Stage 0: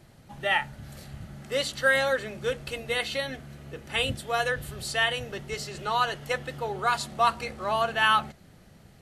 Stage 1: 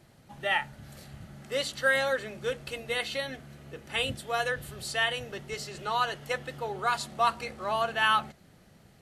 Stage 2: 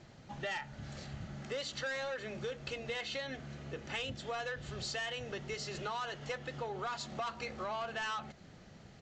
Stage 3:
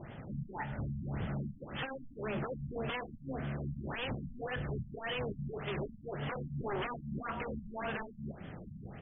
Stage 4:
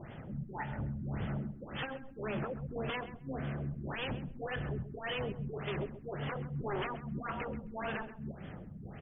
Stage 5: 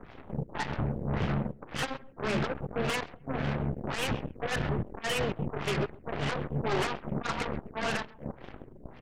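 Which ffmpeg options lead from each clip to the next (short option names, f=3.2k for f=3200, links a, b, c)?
-af "lowshelf=f=85:g=-6.5,volume=-2.5dB"
-af "aresample=16000,asoftclip=type=tanh:threshold=-25.5dB,aresample=44100,acompressor=threshold=-39dB:ratio=6,volume=2dB"
-af "aeval=exprs='0.01*(abs(mod(val(0)/0.01+3,4)-2)-1)':c=same,afftfilt=real='re*lt(b*sr/1024,230*pow(3600/230,0.5+0.5*sin(2*PI*1.8*pts/sr)))':imag='im*lt(b*sr/1024,230*pow(3600/230,0.5+0.5*sin(2*PI*1.8*pts/sr)))':win_size=1024:overlap=0.75,volume=9.5dB"
-filter_complex "[0:a]asplit=2[a][b];[b]adelay=132,lowpass=f=2.6k:p=1,volume=-13dB,asplit=2[c][d];[d]adelay=132,lowpass=f=2.6k:p=1,volume=0.19[e];[a][c][e]amix=inputs=3:normalize=0"
-af "aeval=exprs='0.0422*(cos(1*acos(clip(val(0)/0.0422,-1,1)))-cos(1*PI/2))+0.00841*(cos(7*acos(clip(val(0)/0.0422,-1,1)))-cos(7*PI/2))+0.00335*(cos(8*acos(clip(val(0)/0.0422,-1,1)))-cos(8*PI/2))':c=same,volume=6dB"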